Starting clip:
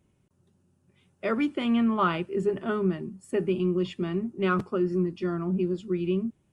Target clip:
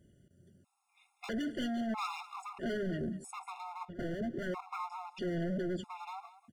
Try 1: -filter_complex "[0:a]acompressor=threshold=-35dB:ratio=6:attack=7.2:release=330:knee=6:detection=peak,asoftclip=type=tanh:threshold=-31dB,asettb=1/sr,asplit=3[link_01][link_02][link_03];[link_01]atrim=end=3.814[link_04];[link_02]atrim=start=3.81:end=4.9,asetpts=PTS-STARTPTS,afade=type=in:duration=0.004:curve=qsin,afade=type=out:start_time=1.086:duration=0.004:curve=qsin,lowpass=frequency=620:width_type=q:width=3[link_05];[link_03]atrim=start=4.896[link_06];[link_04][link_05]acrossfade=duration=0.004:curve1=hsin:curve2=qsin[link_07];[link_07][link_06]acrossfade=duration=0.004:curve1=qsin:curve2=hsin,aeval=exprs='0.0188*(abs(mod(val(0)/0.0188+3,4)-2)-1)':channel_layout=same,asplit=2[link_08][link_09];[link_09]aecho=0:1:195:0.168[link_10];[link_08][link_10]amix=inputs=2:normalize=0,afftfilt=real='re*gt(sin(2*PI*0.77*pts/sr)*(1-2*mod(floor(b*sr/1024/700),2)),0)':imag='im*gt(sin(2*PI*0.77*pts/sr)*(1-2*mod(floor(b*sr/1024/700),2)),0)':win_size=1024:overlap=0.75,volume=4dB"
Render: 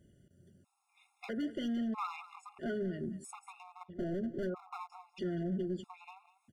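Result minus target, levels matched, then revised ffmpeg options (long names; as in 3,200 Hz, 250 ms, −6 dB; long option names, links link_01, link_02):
downward compressor: peak gain reduction +7 dB
-filter_complex "[0:a]acompressor=threshold=-26.5dB:ratio=6:attack=7.2:release=330:knee=6:detection=peak,asoftclip=type=tanh:threshold=-31dB,asettb=1/sr,asplit=3[link_01][link_02][link_03];[link_01]atrim=end=3.814[link_04];[link_02]atrim=start=3.81:end=4.9,asetpts=PTS-STARTPTS,afade=type=in:duration=0.004:curve=qsin,afade=type=out:start_time=1.086:duration=0.004:curve=qsin,lowpass=frequency=620:width_type=q:width=3[link_05];[link_03]atrim=start=4.896[link_06];[link_04][link_05]acrossfade=duration=0.004:curve1=hsin:curve2=qsin[link_07];[link_07][link_06]acrossfade=duration=0.004:curve1=qsin:curve2=hsin,aeval=exprs='0.0188*(abs(mod(val(0)/0.0188+3,4)-2)-1)':channel_layout=same,asplit=2[link_08][link_09];[link_09]aecho=0:1:195:0.168[link_10];[link_08][link_10]amix=inputs=2:normalize=0,afftfilt=real='re*gt(sin(2*PI*0.77*pts/sr)*(1-2*mod(floor(b*sr/1024/700),2)),0)':imag='im*gt(sin(2*PI*0.77*pts/sr)*(1-2*mod(floor(b*sr/1024/700),2)),0)':win_size=1024:overlap=0.75,volume=4dB"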